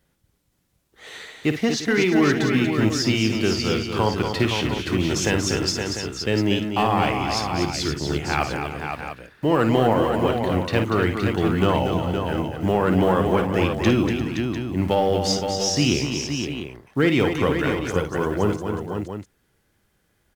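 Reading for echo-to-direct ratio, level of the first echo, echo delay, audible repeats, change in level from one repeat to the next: −1.5 dB, −9.0 dB, 54 ms, 5, repeats not evenly spaced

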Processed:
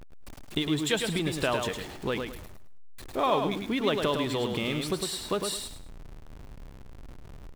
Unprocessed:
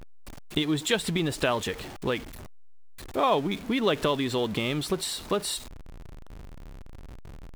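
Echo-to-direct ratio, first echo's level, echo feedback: −5.0 dB, −5.5 dB, 26%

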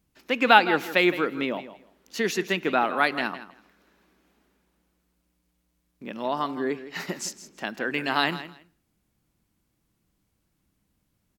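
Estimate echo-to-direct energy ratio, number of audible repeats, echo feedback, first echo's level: −14.0 dB, 2, 18%, −14.0 dB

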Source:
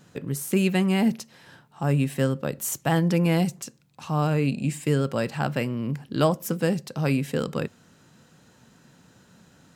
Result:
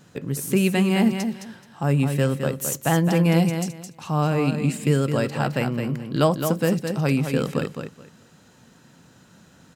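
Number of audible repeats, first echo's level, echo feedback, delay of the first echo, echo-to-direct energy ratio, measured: 3, −7.0 dB, 20%, 214 ms, −7.0 dB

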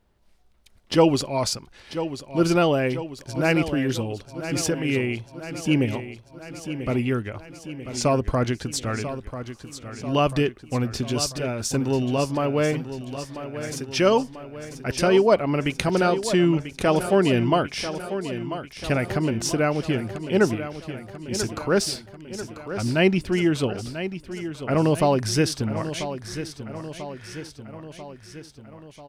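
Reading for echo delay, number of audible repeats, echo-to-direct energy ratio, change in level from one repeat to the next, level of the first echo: 991 ms, 5, −9.0 dB, −4.5 dB, −11.0 dB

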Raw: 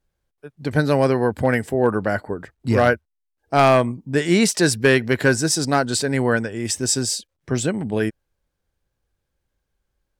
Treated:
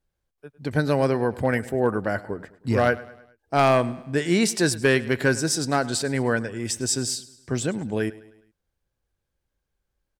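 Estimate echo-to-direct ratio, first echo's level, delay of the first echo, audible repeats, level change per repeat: −18.0 dB, −19.0 dB, 104 ms, 3, −6.0 dB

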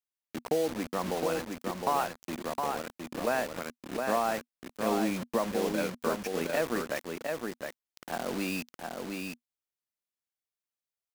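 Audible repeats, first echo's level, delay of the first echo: 1, −4.5 dB, 713 ms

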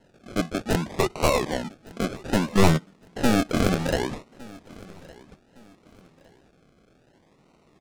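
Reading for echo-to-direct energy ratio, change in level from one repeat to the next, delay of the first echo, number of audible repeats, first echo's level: −21.5 dB, −9.5 dB, 1,161 ms, 2, −22.0 dB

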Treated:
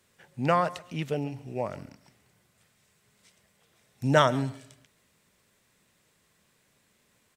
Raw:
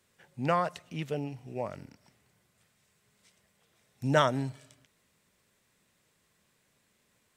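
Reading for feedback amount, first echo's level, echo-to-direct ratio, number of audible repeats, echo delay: 23%, −20.0 dB, −20.0 dB, 2, 137 ms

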